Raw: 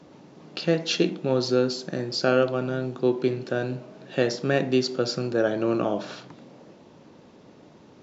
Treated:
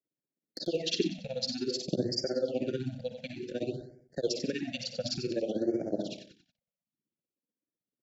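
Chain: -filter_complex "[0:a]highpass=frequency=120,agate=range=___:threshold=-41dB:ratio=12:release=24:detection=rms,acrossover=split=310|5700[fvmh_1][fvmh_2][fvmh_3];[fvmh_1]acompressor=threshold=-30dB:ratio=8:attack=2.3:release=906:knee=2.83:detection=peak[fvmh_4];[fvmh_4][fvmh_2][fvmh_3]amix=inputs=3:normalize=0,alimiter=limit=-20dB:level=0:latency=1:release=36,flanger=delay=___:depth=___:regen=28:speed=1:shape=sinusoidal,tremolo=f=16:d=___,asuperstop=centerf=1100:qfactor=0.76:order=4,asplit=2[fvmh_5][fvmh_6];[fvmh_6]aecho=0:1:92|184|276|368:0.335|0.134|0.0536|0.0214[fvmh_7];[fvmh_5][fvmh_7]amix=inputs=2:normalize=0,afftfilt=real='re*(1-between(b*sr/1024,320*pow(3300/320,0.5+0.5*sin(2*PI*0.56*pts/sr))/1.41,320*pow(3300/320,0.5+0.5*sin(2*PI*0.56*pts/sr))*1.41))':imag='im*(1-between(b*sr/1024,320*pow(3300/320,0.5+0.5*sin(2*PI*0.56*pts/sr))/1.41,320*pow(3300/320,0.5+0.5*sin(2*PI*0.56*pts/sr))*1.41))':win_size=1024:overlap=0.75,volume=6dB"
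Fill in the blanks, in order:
-44dB, 0.1, 4, 1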